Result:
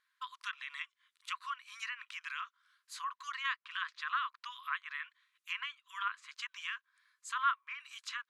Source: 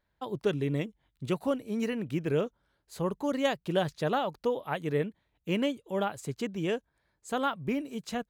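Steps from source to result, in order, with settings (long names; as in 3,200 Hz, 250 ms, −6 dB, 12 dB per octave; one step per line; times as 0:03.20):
linear-phase brick-wall band-pass 990–13,000 Hz
transient designer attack −2 dB, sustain +2 dB
treble cut that deepens with the level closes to 2,100 Hz, closed at −39 dBFS
level +4 dB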